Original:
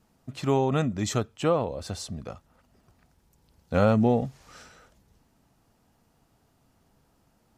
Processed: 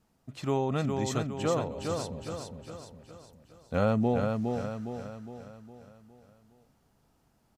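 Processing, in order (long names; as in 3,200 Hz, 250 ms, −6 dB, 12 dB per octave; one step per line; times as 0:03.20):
repeating echo 411 ms, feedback 48%, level −4.5 dB
level −5 dB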